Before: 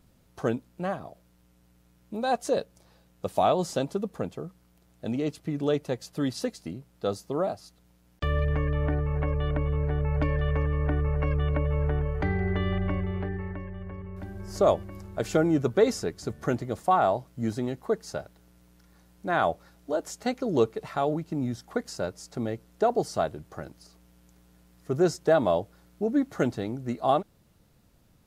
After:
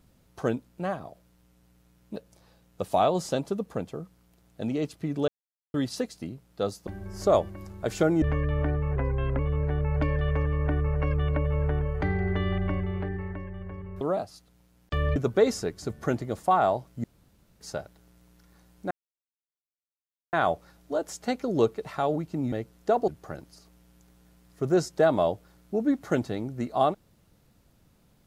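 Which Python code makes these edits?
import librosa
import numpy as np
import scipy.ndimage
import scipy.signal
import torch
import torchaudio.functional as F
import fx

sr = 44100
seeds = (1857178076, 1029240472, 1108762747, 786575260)

y = fx.edit(x, sr, fx.cut(start_s=2.16, length_s=0.44),
    fx.silence(start_s=5.72, length_s=0.46),
    fx.swap(start_s=7.31, length_s=1.15, other_s=14.21, other_length_s=1.35),
    fx.speed_span(start_s=9.2, length_s=0.39, speed=0.91),
    fx.room_tone_fill(start_s=17.44, length_s=0.57),
    fx.insert_silence(at_s=19.31, length_s=1.42),
    fx.cut(start_s=21.5, length_s=0.95),
    fx.cut(start_s=23.01, length_s=0.35), tone=tone)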